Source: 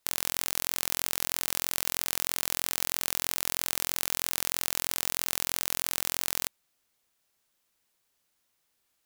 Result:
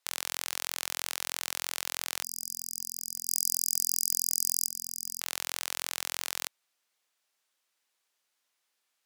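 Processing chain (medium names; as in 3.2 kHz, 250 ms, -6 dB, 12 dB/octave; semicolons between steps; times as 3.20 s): 3.27–4.67 s: treble shelf 2.4 kHz +9.5 dB; 2.23–5.21 s: spectral selection erased 250–4900 Hz; frequency weighting A; trim -2 dB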